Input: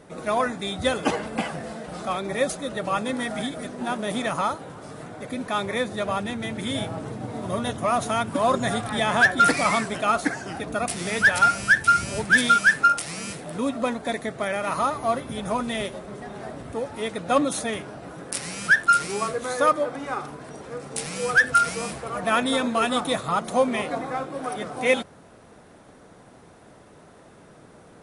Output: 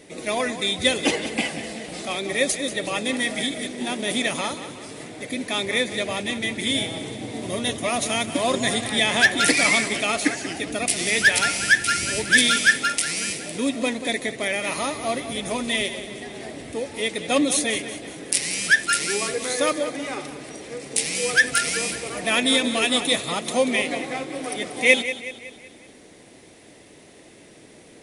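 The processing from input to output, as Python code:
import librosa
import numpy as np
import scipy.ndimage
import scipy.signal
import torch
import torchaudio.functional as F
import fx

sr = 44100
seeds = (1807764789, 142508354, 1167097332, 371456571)

p1 = fx.curve_eq(x, sr, hz=(180.0, 310.0, 1400.0, 2000.0), db=(0, 8, -5, 12))
p2 = p1 + fx.echo_feedback(p1, sr, ms=186, feedback_pct=48, wet_db=-12.0, dry=0)
y = p2 * librosa.db_to_amplitude(-3.5)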